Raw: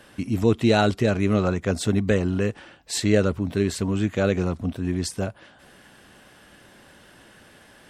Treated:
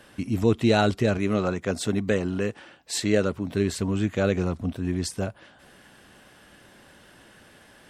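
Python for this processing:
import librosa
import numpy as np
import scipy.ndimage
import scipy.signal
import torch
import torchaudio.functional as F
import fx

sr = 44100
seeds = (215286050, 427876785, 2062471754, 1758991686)

y = fx.highpass(x, sr, hz=160.0, slope=6, at=(1.18, 3.53))
y = F.gain(torch.from_numpy(y), -1.5).numpy()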